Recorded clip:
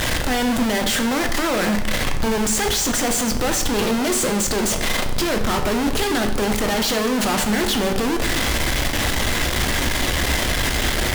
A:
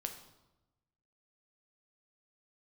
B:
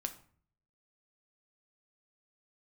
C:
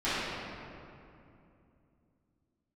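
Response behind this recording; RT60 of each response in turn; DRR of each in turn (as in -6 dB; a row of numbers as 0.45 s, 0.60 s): A; 1.0 s, 0.50 s, 2.7 s; 4.5 dB, 6.5 dB, -16.0 dB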